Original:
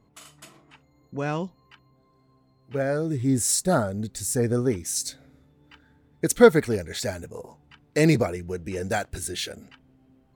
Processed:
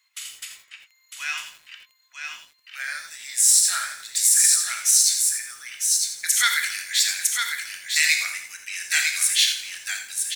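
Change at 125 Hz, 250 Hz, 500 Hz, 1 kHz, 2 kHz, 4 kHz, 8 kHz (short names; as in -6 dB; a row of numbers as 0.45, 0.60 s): under -40 dB, under -40 dB, under -35 dB, -3.0 dB, +9.5 dB, +13.5 dB, +12.5 dB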